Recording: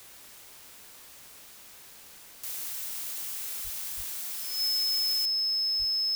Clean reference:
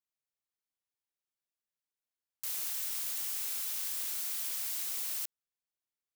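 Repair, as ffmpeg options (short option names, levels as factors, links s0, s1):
-filter_complex "[0:a]bandreject=f=5200:w=30,asplit=3[s0][s1][s2];[s0]afade=t=out:st=3.63:d=0.02[s3];[s1]highpass=f=140:w=0.5412,highpass=f=140:w=1.3066,afade=t=in:st=3.63:d=0.02,afade=t=out:st=3.75:d=0.02[s4];[s2]afade=t=in:st=3.75:d=0.02[s5];[s3][s4][s5]amix=inputs=3:normalize=0,asplit=3[s6][s7][s8];[s6]afade=t=out:st=3.96:d=0.02[s9];[s7]highpass=f=140:w=0.5412,highpass=f=140:w=1.3066,afade=t=in:st=3.96:d=0.02,afade=t=out:st=4.08:d=0.02[s10];[s8]afade=t=in:st=4.08:d=0.02[s11];[s9][s10][s11]amix=inputs=3:normalize=0,asplit=3[s12][s13][s14];[s12]afade=t=out:st=5.78:d=0.02[s15];[s13]highpass=f=140:w=0.5412,highpass=f=140:w=1.3066,afade=t=in:st=5.78:d=0.02,afade=t=out:st=5.9:d=0.02[s16];[s14]afade=t=in:st=5.9:d=0.02[s17];[s15][s16][s17]amix=inputs=3:normalize=0,afwtdn=0.0032,asetnsamples=n=441:p=0,asendcmd='5.43 volume volume -3dB',volume=1"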